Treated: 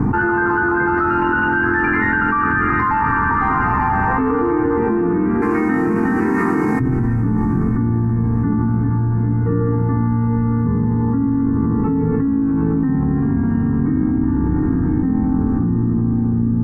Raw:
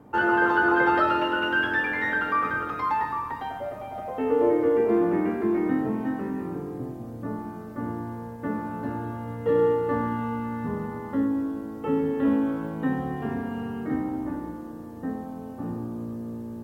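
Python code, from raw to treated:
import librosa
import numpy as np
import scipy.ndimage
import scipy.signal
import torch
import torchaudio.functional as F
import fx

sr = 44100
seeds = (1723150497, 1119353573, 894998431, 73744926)

y = fx.tilt_eq(x, sr, slope=fx.steps((0.0, -2.5), (5.41, 3.0), (6.79, -4.0)))
y = fx.rider(y, sr, range_db=3, speed_s=0.5)
y = fx.air_absorb(y, sr, metres=80.0)
y = fx.fixed_phaser(y, sr, hz=1400.0, stages=4)
y = fx.echo_diffused(y, sr, ms=819, feedback_pct=42, wet_db=-6.0)
y = fx.env_flatten(y, sr, amount_pct=100)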